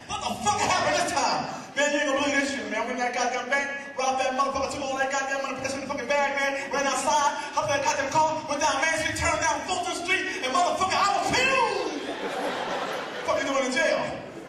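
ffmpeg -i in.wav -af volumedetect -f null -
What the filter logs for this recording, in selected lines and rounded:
mean_volume: -26.1 dB
max_volume: -14.0 dB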